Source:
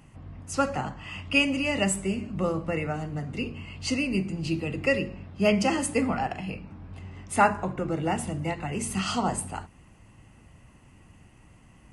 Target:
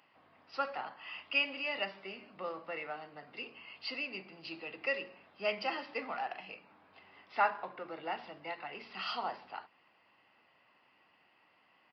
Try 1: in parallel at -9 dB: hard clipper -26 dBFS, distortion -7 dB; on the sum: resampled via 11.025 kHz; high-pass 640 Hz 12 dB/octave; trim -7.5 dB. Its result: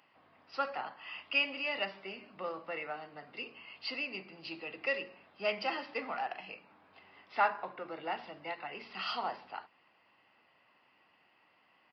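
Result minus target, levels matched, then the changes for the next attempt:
hard clipper: distortion -5 dB
change: hard clipper -35.5 dBFS, distortion -2 dB

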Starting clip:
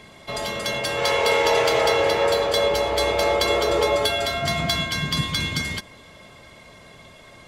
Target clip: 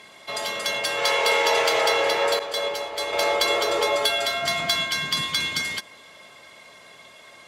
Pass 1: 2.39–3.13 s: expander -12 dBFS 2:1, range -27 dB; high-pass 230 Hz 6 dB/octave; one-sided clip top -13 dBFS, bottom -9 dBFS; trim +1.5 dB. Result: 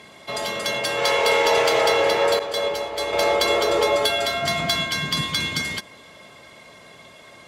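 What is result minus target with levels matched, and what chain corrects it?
250 Hz band +5.0 dB
2.39–3.13 s: expander -12 dBFS 2:1, range -27 dB; high-pass 740 Hz 6 dB/octave; one-sided clip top -13 dBFS, bottom -9 dBFS; trim +1.5 dB

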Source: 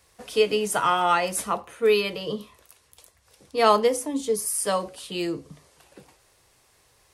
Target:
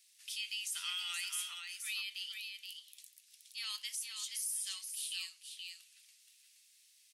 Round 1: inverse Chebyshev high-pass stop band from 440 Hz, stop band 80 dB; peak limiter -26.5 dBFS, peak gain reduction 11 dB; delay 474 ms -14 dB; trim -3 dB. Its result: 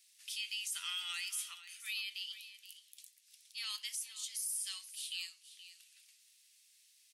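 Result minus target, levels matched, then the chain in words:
echo-to-direct -8.5 dB
inverse Chebyshev high-pass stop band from 440 Hz, stop band 80 dB; peak limiter -26.5 dBFS, peak gain reduction 11 dB; delay 474 ms -5.5 dB; trim -3 dB

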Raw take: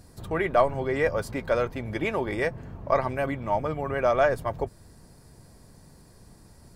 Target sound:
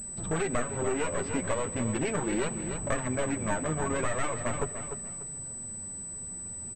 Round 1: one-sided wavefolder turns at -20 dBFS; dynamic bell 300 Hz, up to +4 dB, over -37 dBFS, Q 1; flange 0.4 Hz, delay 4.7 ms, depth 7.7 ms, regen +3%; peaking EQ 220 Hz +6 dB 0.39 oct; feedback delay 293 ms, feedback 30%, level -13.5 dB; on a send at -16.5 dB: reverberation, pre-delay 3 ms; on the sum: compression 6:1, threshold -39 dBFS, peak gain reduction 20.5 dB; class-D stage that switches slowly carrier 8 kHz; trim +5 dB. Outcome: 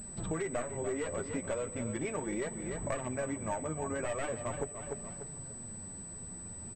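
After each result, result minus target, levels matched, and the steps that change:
compression: peak gain reduction +7 dB; one-sided wavefolder: distortion -9 dB
change: compression 6:1, threshold -31 dBFS, peak gain reduction 14 dB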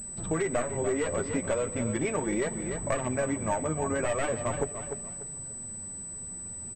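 one-sided wavefolder: distortion -9 dB
change: one-sided wavefolder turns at -27 dBFS

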